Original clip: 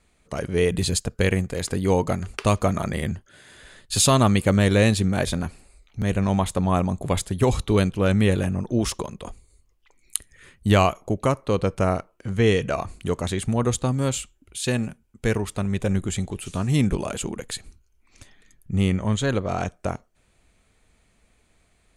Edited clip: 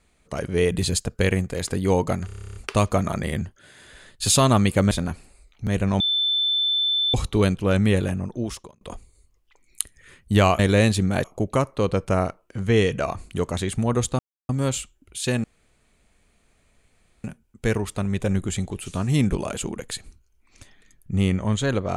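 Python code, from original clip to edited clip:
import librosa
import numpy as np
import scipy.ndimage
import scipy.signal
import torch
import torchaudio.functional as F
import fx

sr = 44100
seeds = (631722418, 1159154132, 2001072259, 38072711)

y = fx.edit(x, sr, fx.stutter(start_s=2.26, slice_s=0.03, count=11),
    fx.move(start_s=4.61, length_s=0.65, to_s=10.94),
    fx.bleep(start_s=6.35, length_s=1.14, hz=3530.0, db=-19.0),
    fx.fade_out_span(start_s=8.08, length_s=1.08, curve='qsin'),
    fx.insert_silence(at_s=13.89, length_s=0.3),
    fx.insert_room_tone(at_s=14.84, length_s=1.8), tone=tone)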